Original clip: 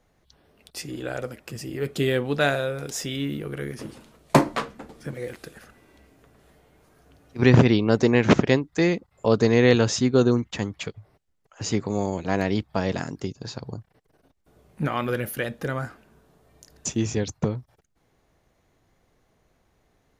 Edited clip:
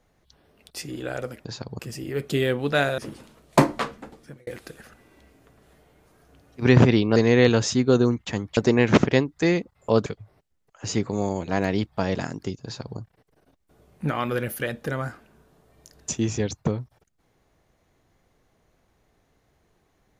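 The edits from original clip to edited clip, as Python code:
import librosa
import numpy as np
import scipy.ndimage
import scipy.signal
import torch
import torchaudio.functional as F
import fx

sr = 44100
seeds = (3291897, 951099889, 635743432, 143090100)

y = fx.edit(x, sr, fx.cut(start_s=2.64, length_s=1.11),
    fx.fade_out_span(start_s=4.8, length_s=0.44),
    fx.move(start_s=9.42, length_s=1.41, to_s=7.93),
    fx.duplicate(start_s=13.41, length_s=0.34, to_s=1.45), tone=tone)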